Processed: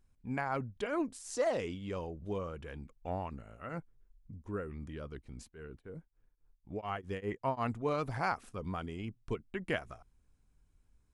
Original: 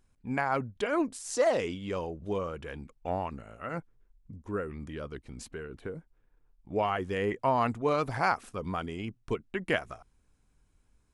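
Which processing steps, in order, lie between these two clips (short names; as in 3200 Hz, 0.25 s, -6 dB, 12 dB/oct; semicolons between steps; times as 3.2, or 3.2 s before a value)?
low shelf 170 Hz +6.5 dB; 5.24–7.62 beating tremolo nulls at 2.8 Hz -> 6.2 Hz; gain -6.5 dB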